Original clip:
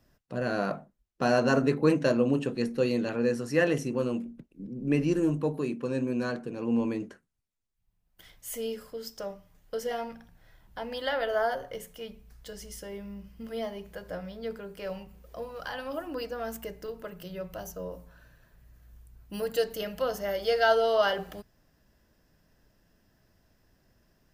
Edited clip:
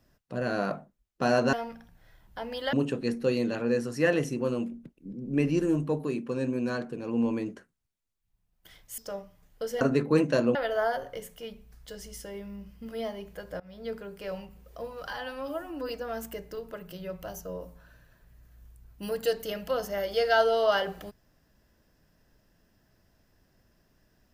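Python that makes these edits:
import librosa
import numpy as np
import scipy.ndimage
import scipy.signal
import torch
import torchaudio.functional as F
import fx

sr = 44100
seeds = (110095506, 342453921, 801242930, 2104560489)

y = fx.edit(x, sr, fx.swap(start_s=1.53, length_s=0.74, other_s=9.93, other_length_s=1.2),
    fx.cut(start_s=8.52, length_s=0.58),
    fx.fade_in_from(start_s=14.18, length_s=0.26, floor_db=-22.5),
    fx.stretch_span(start_s=15.66, length_s=0.54, factor=1.5), tone=tone)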